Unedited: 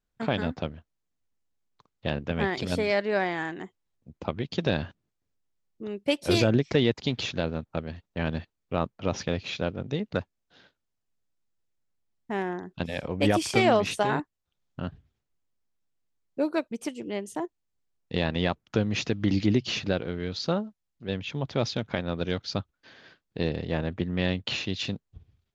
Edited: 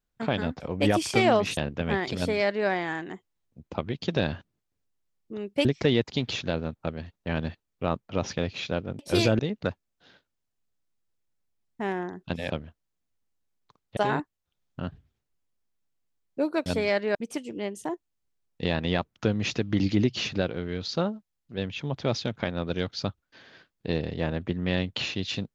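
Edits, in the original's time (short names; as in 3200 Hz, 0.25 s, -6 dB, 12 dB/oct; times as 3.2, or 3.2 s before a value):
0.6–2.07 swap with 13–13.97
2.68–3.17 copy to 16.66
6.15–6.55 move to 9.89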